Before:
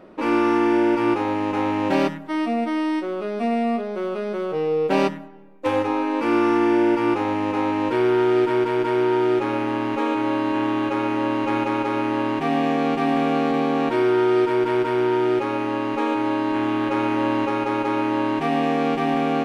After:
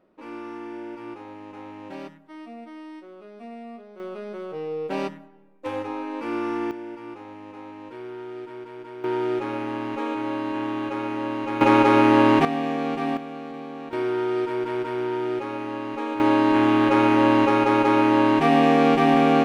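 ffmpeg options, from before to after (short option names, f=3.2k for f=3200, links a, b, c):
-af "asetnsamples=n=441:p=0,asendcmd='4 volume volume -8.5dB;6.71 volume volume -18dB;9.04 volume volume -5.5dB;11.61 volume volume 7dB;12.45 volume volume -5dB;13.17 volume volume -15dB;13.93 volume volume -6.5dB;16.2 volume volume 4dB',volume=-17.5dB"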